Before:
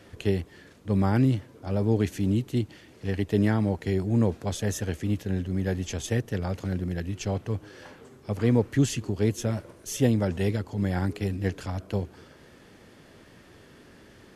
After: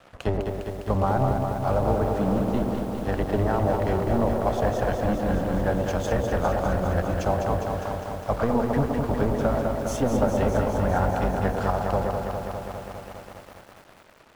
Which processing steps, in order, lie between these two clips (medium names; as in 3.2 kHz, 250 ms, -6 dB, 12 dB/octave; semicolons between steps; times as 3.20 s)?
octave divider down 1 oct, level 0 dB; low-pass that closes with the level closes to 1.4 kHz, closed at -17 dBFS; high-order bell 900 Hz +15 dB; de-hum 119.1 Hz, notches 4; compression 12:1, threshold -19 dBFS, peak gain reduction 8.5 dB; crossover distortion -44 dBFS; feedback echo behind a band-pass 116 ms, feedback 36%, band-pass 420 Hz, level -4 dB; bit-crushed delay 203 ms, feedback 80%, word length 8-bit, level -5.5 dB